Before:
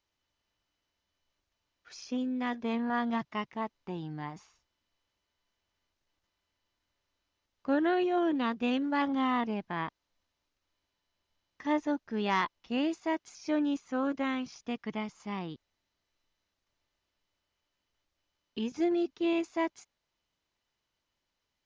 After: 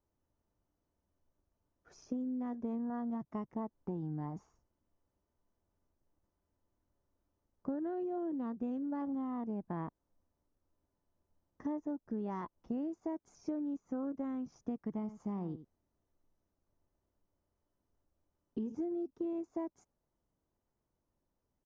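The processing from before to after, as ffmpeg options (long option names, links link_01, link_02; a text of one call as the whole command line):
ffmpeg -i in.wav -filter_complex "[0:a]asettb=1/sr,asplit=3[link_01][link_02][link_03];[link_01]atrim=end=14.844[link_04];[link_02]atrim=start=14.84:end=18.75,asetpts=PTS-STARTPTS,afade=type=in:duration=0.004:curve=qsin,afade=type=out:start_time=3.906:duration=0.004:curve=qsin,aecho=1:1:84:0.178,atrim=end_sample=172431[link_05];[link_03]atrim=start=18.746[link_06];[link_04][link_05]acrossfade=duration=0.004:curve1=hsin:curve2=qsin[link_07];[link_07][link_06]acrossfade=duration=0.004:curve1=qsin:curve2=hsin,firequalizer=gain_entry='entry(230,0);entry(2500,-27);entry(4100,-28);entry(5900,-17)':delay=0.05:min_phase=1,acompressor=threshold=-41dB:ratio=12,volume=6dB" out.wav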